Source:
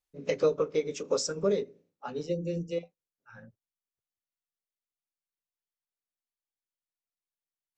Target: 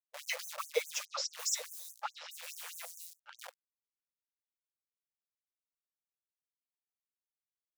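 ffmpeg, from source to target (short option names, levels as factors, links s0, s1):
-filter_complex "[0:a]equalizer=f=160:w=1.4:g=13.5,acrusher=bits=8:dc=4:mix=0:aa=0.000001,asettb=1/sr,asplit=3[s0][s1][s2];[s0]atrim=end=1.054[s3];[s1]atrim=start=1.05:end=3.39,asetpts=PTS-STARTPTS,afade=t=in:d=0.004:c=qsin,afade=t=out:st=2.336:d=0.004:c=qsin,acrossover=split=5100[s4][s5];[s5]adelay=280[s6];[s4][s6]amix=inputs=2:normalize=0,atrim=end_sample=103194[s7];[s2]atrim=start=3.386[s8];[s3][s7]acrossfade=d=0.004:c1=hsin:c2=qsin[s9];[s9][s8]acrossfade=d=0.004:c1=qsin:c2=hsin,afftfilt=real='re*gte(b*sr/1024,470*pow(6200/470,0.5+0.5*sin(2*PI*4.8*pts/sr)))':imag='im*gte(b*sr/1024,470*pow(6200/470,0.5+0.5*sin(2*PI*4.8*pts/sr)))':win_size=1024:overlap=0.75,volume=1.68"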